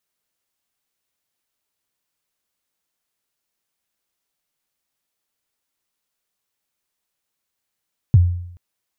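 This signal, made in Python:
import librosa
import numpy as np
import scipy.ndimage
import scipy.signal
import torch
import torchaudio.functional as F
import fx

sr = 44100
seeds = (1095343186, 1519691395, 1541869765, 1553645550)

y = fx.drum_kick(sr, seeds[0], length_s=0.43, level_db=-5.0, start_hz=140.0, end_hz=88.0, sweep_ms=31.0, decay_s=0.72, click=False)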